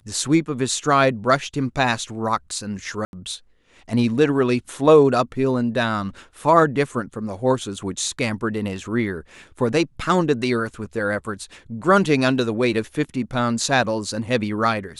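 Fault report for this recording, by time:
3.05–3.13 gap 81 ms

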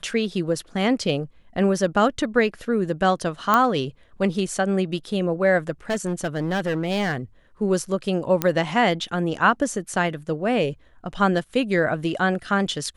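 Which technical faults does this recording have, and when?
3.54 pop -5 dBFS
5.9–7.17 clipped -19.5 dBFS
8.42 pop -5 dBFS

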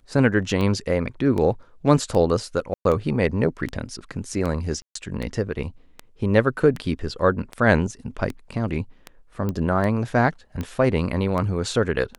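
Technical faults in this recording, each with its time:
tick 78 rpm -16 dBFS
2.74–2.85 gap 0.112 s
4.82–4.95 gap 0.134 s
9.49 pop -15 dBFS

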